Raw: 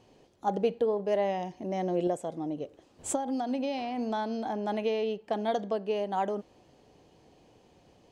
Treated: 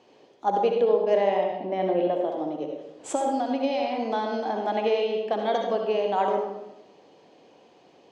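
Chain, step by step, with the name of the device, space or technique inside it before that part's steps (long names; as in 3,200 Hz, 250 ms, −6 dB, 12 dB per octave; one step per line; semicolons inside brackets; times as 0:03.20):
0:01.29–0:02.29: low-pass filter 4,000 Hz 24 dB per octave
supermarket ceiling speaker (band-pass filter 290–5,200 Hz; convolution reverb RT60 0.90 s, pre-delay 58 ms, DRR 2 dB)
level +4.5 dB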